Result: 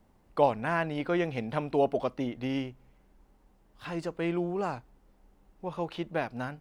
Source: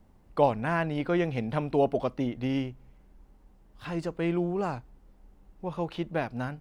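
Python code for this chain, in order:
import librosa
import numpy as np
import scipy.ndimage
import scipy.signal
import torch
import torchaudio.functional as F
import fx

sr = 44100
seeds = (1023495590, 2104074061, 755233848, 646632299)

y = fx.low_shelf(x, sr, hz=210.0, db=-7.0)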